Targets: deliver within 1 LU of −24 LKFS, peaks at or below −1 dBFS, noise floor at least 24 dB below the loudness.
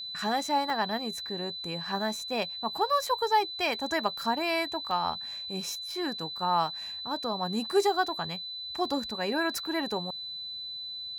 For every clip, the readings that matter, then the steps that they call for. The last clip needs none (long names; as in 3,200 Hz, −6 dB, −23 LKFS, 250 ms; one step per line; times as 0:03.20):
number of dropouts 3; longest dropout 1.1 ms; interfering tone 4,000 Hz; level of the tone −36 dBFS; integrated loudness −30.0 LKFS; sample peak −13.0 dBFS; target loudness −24.0 LKFS
→ repair the gap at 0:00.70/0:02.20/0:04.91, 1.1 ms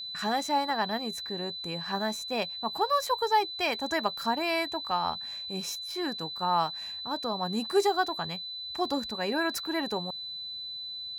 number of dropouts 0; interfering tone 4,000 Hz; level of the tone −36 dBFS
→ notch filter 4,000 Hz, Q 30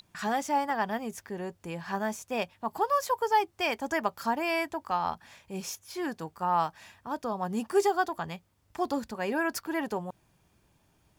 interfering tone none found; integrated loudness −31.0 LKFS; sample peak −13.5 dBFS; target loudness −24.0 LKFS
→ level +7 dB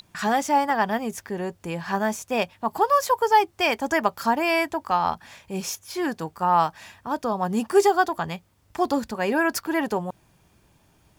integrated loudness −24.0 LKFS; sample peak −6.5 dBFS; background noise floor −62 dBFS